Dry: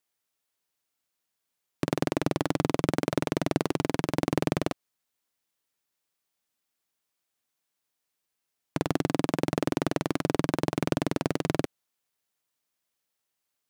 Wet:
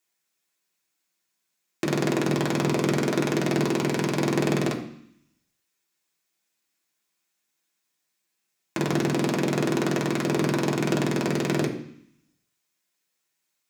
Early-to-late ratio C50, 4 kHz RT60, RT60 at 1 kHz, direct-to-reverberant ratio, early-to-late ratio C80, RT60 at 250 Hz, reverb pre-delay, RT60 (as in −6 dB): 9.0 dB, 0.85 s, 0.70 s, −2.5 dB, 12.0 dB, 0.85 s, 3 ms, 0.65 s